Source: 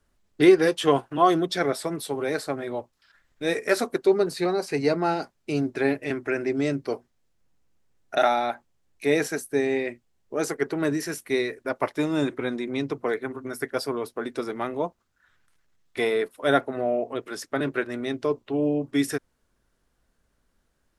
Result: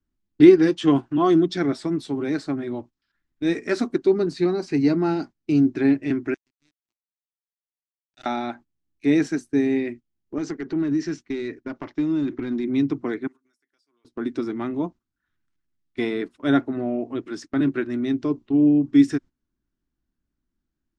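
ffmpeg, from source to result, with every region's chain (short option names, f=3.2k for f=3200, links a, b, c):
-filter_complex "[0:a]asettb=1/sr,asplit=3[a][b][c];[a]atrim=end=6.344[d];[b]atrim=start=6.34:end=8.26,asetpts=PTS-STARTPTS,afade=t=in:d=0.004:c=qsin,afade=t=out:st=1.916:d=0.004:c=qsin,aderivative,aeval=exprs='sgn(val(0))*max(abs(val(0))-0.0106,0)':c=same[e];[c]atrim=start=8.256[f];[d][e]acrossfade=d=0.004:c1=hsin:c2=qsin[g];[g][f]acrossfade=d=0.004:c1=qsin:c2=hsin,asettb=1/sr,asplit=3[h][i][j];[h]atrim=end=10.384[k];[i]atrim=start=10.38:end=12.64,asetpts=PTS-STARTPTS,afade=t=in:d=0.004:c=qsin,afade=t=out:st=2.256:d=0.004:c=qsin,lowpass=f=6.6k:w=0.5412,lowpass=f=6.6k:w=1.3066,acompressor=threshold=-26dB:ratio=5:attack=3.2:release=140:knee=1:detection=peak,aeval=exprs='clip(val(0),-1,0.0531)':c=same[l];[j]atrim=start=12.636[m];[k][l]acrossfade=d=0.004:c1=hsin:c2=qsin[n];[n][m]acrossfade=d=0.004:c1=qsin:c2=hsin,asettb=1/sr,asplit=3[o][p][q];[o]atrim=end=13.274[r];[p]atrim=start=13.27:end=14.05,asetpts=PTS-STARTPTS,afade=t=in:d=0.004:c=qsin,afade=t=out:st=0.776:d=0.004:c=qsin,aderivative,acompressor=threshold=-53dB:ratio=4:attack=3.2:release=140:knee=1:detection=peak[s];[q]atrim=start=14.046[t];[r][s]acrossfade=d=0.004:c1=hsin:c2=qsin[u];[u][t]acrossfade=d=0.004:c1=qsin:c2=hsin,agate=range=-13dB:threshold=-40dB:ratio=16:detection=peak,lowpass=f=7.1k:w=0.5412,lowpass=f=7.1k:w=1.3066,lowshelf=f=390:t=q:w=3:g=7,volume=-3dB"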